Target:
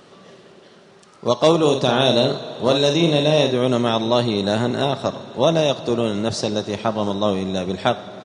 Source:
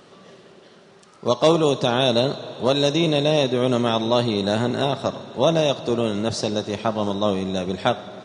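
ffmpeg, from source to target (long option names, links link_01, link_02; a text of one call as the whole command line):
ffmpeg -i in.wav -filter_complex "[0:a]asplit=3[link_01][link_02][link_03];[link_01]afade=type=out:start_time=1.6:duration=0.02[link_04];[link_02]asplit=2[link_05][link_06];[link_06]adelay=47,volume=-6dB[link_07];[link_05][link_07]amix=inputs=2:normalize=0,afade=type=in:start_time=1.6:duration=0.02,afade=type=out:start_time=3.55:duration=0.02[link_08];[link_03]afade=type=in:start_time=3.55:duration=0.02[link_09];[link_04][link_08][link_09]amix=inputs=3:normalize=0,volume=1.5dB" out.wav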